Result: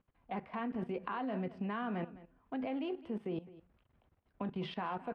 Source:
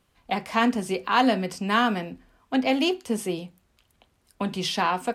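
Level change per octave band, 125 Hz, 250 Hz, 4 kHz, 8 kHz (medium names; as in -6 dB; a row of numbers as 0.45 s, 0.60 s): -8.5 dB, -13.0 dB, -22.5 dB, under -40 dB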